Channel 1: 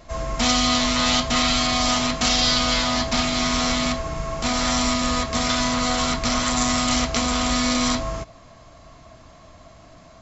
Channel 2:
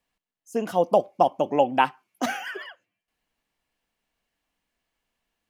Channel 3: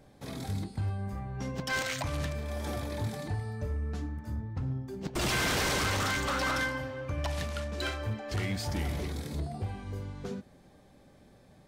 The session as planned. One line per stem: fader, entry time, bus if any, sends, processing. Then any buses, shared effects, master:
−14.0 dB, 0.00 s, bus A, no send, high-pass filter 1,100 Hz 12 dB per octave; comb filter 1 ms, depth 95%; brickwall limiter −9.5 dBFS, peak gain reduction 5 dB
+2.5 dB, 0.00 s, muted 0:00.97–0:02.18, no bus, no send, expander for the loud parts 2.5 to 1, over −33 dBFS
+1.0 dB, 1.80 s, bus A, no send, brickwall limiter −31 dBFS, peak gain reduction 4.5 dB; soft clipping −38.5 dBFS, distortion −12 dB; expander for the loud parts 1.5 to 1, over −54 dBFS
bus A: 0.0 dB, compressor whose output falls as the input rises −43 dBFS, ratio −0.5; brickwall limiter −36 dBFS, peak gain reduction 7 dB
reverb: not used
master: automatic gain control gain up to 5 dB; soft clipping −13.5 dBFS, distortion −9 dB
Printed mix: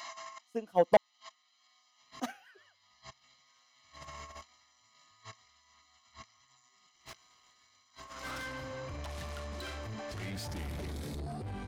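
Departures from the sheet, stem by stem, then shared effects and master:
stem 1 −14.0 dB → −3.0 dB
master: missing automatic gain control gain up to 5 dB

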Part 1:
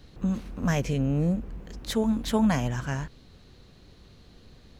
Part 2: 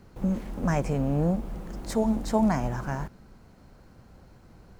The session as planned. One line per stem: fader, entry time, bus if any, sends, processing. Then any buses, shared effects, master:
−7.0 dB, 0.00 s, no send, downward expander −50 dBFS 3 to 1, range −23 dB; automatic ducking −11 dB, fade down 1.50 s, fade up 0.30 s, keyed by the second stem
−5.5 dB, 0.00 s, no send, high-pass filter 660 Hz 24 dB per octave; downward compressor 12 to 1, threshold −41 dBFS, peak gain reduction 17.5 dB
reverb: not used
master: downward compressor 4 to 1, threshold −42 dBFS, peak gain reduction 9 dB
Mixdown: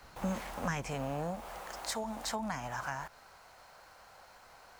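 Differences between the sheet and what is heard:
stem 2 −5.5 dB → +6.5 dB
master: missing downward compressor 4 to 1, threshold −42 dBFS, peak gain reduction 9 dB

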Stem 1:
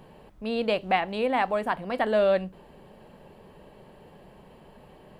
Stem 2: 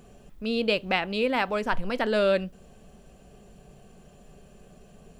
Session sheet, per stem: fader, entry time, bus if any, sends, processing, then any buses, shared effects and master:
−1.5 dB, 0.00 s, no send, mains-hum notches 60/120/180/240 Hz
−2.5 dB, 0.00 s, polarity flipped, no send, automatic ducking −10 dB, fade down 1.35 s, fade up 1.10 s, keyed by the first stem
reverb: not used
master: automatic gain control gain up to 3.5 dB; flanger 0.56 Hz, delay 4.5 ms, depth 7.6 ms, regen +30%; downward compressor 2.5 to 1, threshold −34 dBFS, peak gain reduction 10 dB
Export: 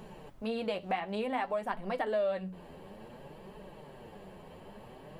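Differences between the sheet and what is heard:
stem 1 −1.5 dB → +5.0 dB
master: missing automatic gain control gain up to 3.5 dB

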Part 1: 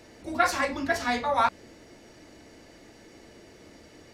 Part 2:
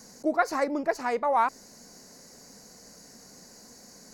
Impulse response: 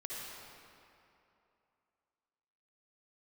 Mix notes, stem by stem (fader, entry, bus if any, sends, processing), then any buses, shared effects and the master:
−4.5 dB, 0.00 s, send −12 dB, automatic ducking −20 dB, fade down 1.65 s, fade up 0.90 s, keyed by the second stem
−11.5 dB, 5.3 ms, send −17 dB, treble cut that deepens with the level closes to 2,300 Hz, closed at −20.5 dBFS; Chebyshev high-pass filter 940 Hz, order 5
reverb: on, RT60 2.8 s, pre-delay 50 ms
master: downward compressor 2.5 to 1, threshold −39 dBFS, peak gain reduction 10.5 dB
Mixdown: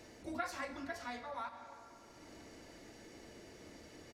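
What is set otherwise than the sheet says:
stem 2 −11.5 dB → −19.5 dB
reverb return −10.0 dB

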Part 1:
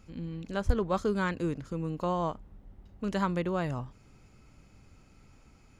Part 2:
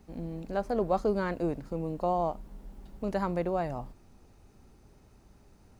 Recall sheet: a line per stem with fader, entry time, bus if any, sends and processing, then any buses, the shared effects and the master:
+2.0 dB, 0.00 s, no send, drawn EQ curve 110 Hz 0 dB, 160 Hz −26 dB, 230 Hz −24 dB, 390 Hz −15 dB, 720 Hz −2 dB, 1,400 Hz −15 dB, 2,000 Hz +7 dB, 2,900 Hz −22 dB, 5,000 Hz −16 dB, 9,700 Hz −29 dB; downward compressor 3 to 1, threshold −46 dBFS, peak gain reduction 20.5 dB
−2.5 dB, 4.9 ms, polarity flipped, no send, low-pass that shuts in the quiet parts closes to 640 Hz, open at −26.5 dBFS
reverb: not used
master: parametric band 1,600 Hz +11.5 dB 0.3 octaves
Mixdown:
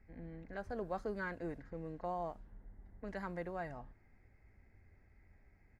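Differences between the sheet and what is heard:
stem 1 +2.0 dB → −7.0 dB
stem 2 −2.5 dB → −12.5 dB

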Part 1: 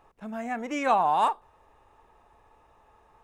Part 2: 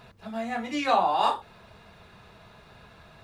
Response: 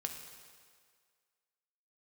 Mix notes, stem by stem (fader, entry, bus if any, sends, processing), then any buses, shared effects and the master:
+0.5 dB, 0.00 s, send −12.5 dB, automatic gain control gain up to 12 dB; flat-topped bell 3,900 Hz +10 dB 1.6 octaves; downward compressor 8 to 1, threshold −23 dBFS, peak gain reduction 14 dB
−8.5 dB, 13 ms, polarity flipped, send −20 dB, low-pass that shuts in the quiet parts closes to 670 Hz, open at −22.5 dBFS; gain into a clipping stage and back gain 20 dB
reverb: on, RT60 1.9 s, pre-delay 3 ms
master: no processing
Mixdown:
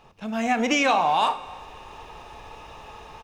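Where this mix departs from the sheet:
stem 2: missing gain into a clipping stage and back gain 20 dB
reverb return +9.5 dB

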